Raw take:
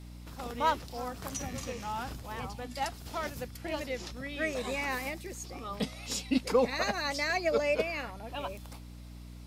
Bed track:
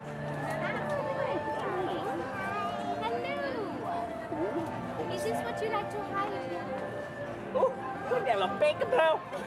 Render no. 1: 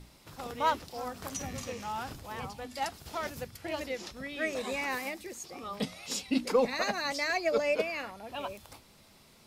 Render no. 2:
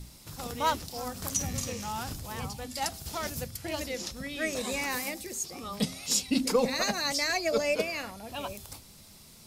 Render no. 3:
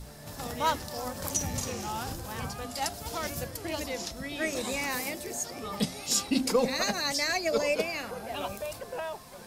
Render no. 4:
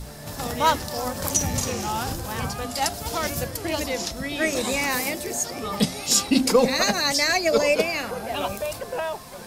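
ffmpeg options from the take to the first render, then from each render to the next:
-af "bandreject=f=60:t=h:w=6,bandreject=f=120:t=h:w=6,bandreject=f=180:t=h:w=6,bandreject=f=240:t=h:w=6,bandreject=f=300:t=h:w=6"
-af "bass=f=250:g=8,treble=f=4000:g=11,bandreject=f=131.8:t=h:w=4,bandreject=f=263.6:t=h:w=4,bandreject=f=395.4:t=h:w=4,bandreject=f=527.2:t=h:w=4,bandreject=f=659:t=h:w=4,bandreject=f=790.8:t=h:w=4"
-filter_complex "[1:a]volume=0.282[s0];[0:a][s0]amix=inputs=2:normalize=0"
-af "volume=2.37"

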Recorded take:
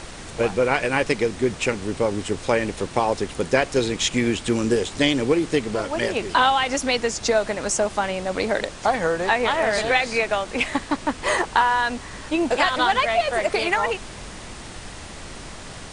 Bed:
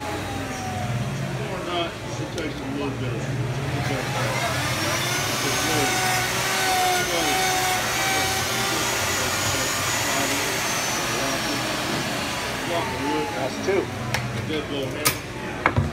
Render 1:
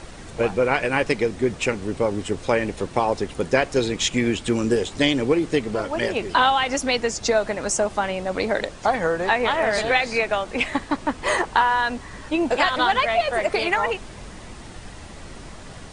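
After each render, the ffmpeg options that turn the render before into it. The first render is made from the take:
-af "afftdn=nr=6:nf=-38"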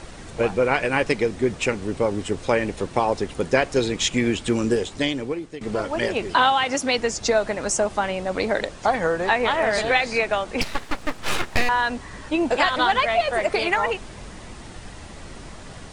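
-filter_complex "[0:a]asettb=1/sr,asplit=3[s0][s1][s2];[s0]atrim=end=6.344[s3];[s1]atrim=start=6.34:end=6.98,asetpts=PTS-STARTPTS,afade=t=in:d=0.004:c=qsin,afade=t=out:st=0.636:d=0.004:c=qsin,highpass=f=81:w=0.5412,highpass=f=81:w=1.3066[s4];[s2]atrim=start=6.976[s5];[s3][s4]acrossfade=d=0.004:c1=hsin:c2=qsin[s6];[s6][s5]acrossfade=d=0.004:c1=qsin:c2=hsin,asettb=1/sr,asplit=3[s7][s8][s9];[s7]atrim=end=10.614[s10];[s8]atrim=start=10.61:end=11.69,asetpts=PTS-STARTPTS,afade=t=in:d=0.004:c=qsin,afade=t=out:st=1.076:d=0.004:c=qsin,aeval=exprs='abs(val(0))':c=same[s11];[s9]atrim=start=11.686[s12];[s10][s11]acrossfade=d=0.004:c1=hsin:c2=qsin[s13];[s13][s12]acrossfade=d=0.004:c1=qsin:c2=hsin,asplit=2[s14][s15];[s14]atrim=end=5.61,asetpts=PTS-STARTPTS,afade=t=out:st=4.64:d=0.97:silence=0.133352[s16];[s15]atrim=start=5.61,asetpts=PTS-STARTPTS,afade=t=in:d=0.004:c=hsin:silence=0.133352[s17];[s16][s17]concat=n=2:v=0:a=1"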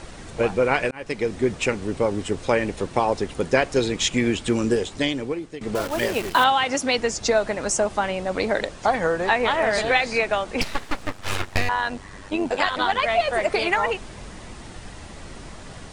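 -filter_complex "[0:a]asettb=1/sr,asplit=3[s0][s1][s2];[s0]atrim=end=5.754[s3];[s1]atrim=start=5.75:end=6.44,asetpts=PTS-STARTPTS,afade=t=in:d=0.004:c=qsin,afade=t=out:st=0.686:d=0.004:c=qsin,acrusher=bits=6:dc=4:mix=0:aa=0.000001[s4];[s2]atrim=start=6.436[s5];[s3][s4]acrossfade=d=0.004:c1=hsin:c2=qsin[s6];[s6][s5]acrossfade=d=0.004:c1=qsin:c2=hsin,asettb=1/sr,asplit=3[s7][s8][s9];[s7]atrim=end=11.074[s10];[s8]atrim=start=11.07:end=13.03,asetpts=PTS-STARTPTS,afade=t=in:d=0.004:c=qsin,afade=t=out:st=1.956:d=0.004:c=qsin,tremolo=f=96:d=0.621[s11];[s9]atrim=start=13.026[s12];[s10][s11]acrossfade=d=0.004:c1=hsin:c2=qsin[s13];[s13][s12]acrossfade=d=0.004:c1=qsin:c2=hsin,asplit=2[s14][s15];[s14]atrim=end=0.91,asetpts=PTS-STARTPTS,afade=t=out:st=0.906:d=0.004:c=hsin[s16];[s15]atrim=start=0.91,asetpts=PTS-STARTPTS,afade=t=in:d=0.43[s17];[s16][s17]concat=n=2:v=0:a=1"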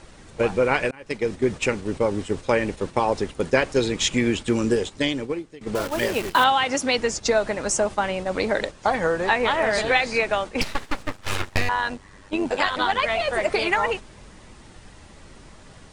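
-af "bandreject=f=700:w=16,agate=range=0.447:threshold=0.0355:ratio=16:detection=peak"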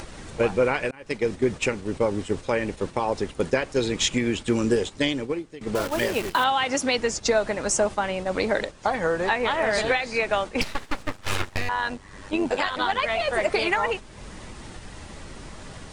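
-af "alimiter=limit=0.282:level=0:latency=1:release=420,acompressor=mode=upward:threshold=0.0282:ratio=2.5"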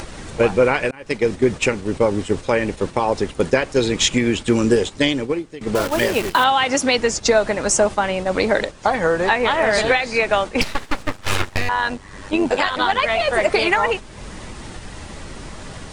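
-af "volume=2"

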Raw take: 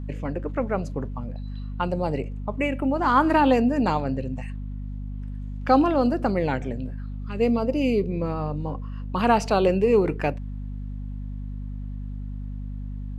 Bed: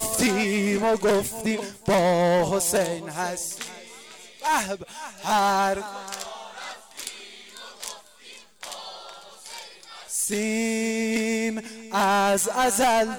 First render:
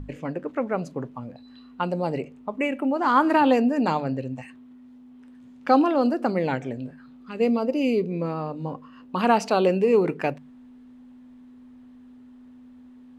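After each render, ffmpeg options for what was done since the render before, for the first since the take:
-af "bandreject=f=50:t=h:w=6,bandreject=f=100:t=h:w=6,bandreject=f=150:t=h:w=6,bandreject=f=200:t=h:w=6"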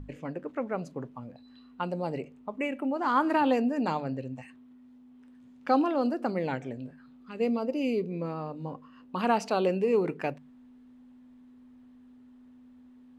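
-af "volume=0.501"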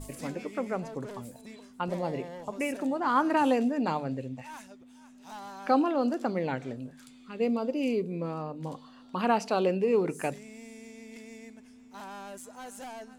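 -filter_complex "[1:a]volume=0.075[s0];[0:a][s0]amix=inputs=2:normalize=0"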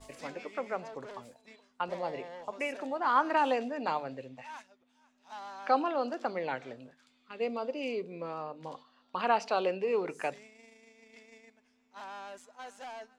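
-filter_complex "[0:a]agate=range=0.398:threshold=0.00562:ratio=16:detection=peak,acrossover=split=450 6200:gain=0.2 1 0.126[s0][s1][s2];[s0][s1][s2]amix=inputs=3:normalize=0"

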